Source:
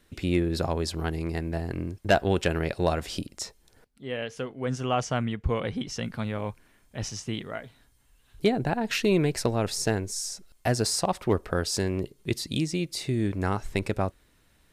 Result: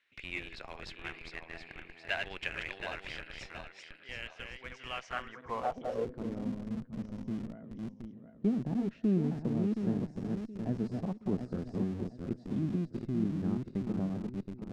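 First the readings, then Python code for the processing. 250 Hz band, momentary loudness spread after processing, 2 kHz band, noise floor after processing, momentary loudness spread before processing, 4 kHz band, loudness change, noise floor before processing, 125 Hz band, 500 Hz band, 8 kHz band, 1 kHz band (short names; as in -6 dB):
-3.5 dB, 13 LU, -6.5 dB, -56 dBFS, 10 LU, -13.0 dB, -7.5 dB, -63 dBFS, -8.0 dB, -12.0 dB, under -25 dB, -11.0 dB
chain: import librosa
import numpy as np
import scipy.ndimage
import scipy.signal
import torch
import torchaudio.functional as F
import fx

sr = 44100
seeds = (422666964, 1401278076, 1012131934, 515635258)

p1 = fx.reverse_delay_fb(x, sr, ms=361, feedback_pct=60, wet_db=-4.0)
p2 = fx.filter_sweep_bandpass(p1, sr, from_hz=2300.0, to_hz=210.0, start_s=4.99, end_s=6.5, q=2.7)
p3 = fx.schmitt(p2, sr, flips_db=-37.5)
p4 = p2 + F.gain(torch.from_numpy(p3), -11.5).numpy()
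p5 = scipy.signal.sosfilt(scipy.signal.bessel(2, 6600.0, 'lowpass', norm='mag', fs=sr, output='sos'), p4)
y = F.gain(torch.from_numpy(p5), -1.5).numpy()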